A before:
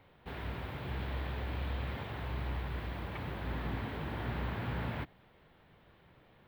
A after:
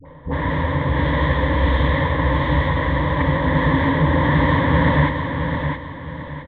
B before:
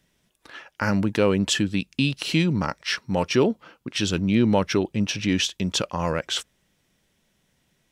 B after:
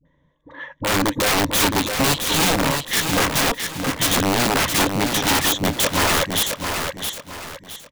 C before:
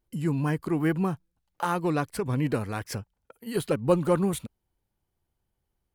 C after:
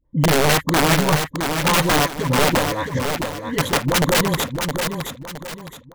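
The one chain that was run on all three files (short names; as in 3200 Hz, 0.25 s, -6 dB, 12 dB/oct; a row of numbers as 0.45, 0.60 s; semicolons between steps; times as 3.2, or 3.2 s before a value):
low-pass opened by the level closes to 1300 Hz, open at -22 dBFS; ripple EQ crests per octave 1.1, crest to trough 16 dB; in parallel at -3 dB: limiter -16.5 dBFS; on the sum: wavefolder -12.5 dBFS; dispersion highs, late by 56 ms, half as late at 630 Hz; wrapped overs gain 14 dB; on a send: feedback echo 0.666 s, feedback 34%, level -6 dB; on the sum: match loudness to -19 LUFS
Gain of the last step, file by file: +13.5, +0.5, +3.0 dB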